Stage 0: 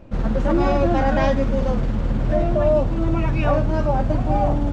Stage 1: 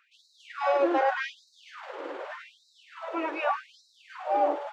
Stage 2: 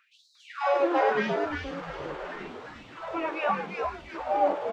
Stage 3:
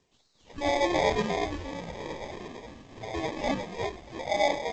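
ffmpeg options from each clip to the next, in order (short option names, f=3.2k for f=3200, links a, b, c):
-af "bass=f=250:g=-12,treble=f=4k:g=-10,bandreject=f=690:w=17,afftfilt=real='re*gte(b*sr/1024,260*pow(3800/260,0.5+0.5*sin(2*PI*0.84*pts/sr)))':imag='im*gte(b*sr/1024,260*pow(3800/260,0.5+0.5*sin(2*PI*0.84*pts/sr)))':win_size=1024:overlap=0.75,volume=-1.5dB"
-filter_complex "[0:a]flanger=delay=9.1:depth=4.6:regen=63:speed=1.6:shape=triangular,asplit=2[a][b];[b]asplit=5[c][d][e][f][g];[c]adelay=350,afreqshift=-130,volume=-4dB[h];[d]adelay=700,afreqshift=-260,volume=-12.4dB[i];[e]adelay=1050,afreqshift=-390,volume=-20.8dB[j];[f]adelay=1400,afreqshift=-520,volume=-29.2dB[k];[g]adelay=1750,afreqshift=-650,volume=-37.6dB[l];[h][i][j][k][l]amix=inputs=5:normalize=0[m];[a][m]amix=inputs=2:normalize=0,volume=4.5dB"
-filter_complex "[0:a]acrossover=split=2800[a][b];[a]acrusher=samples=31:mix=1:aa=0.000001[c];[b]aeval=exprs='max(val(0),0)':c=same[d];[c][d]amix=inputs=2:normalize=0,volume=-1dB" -ar 16000 -c:a g722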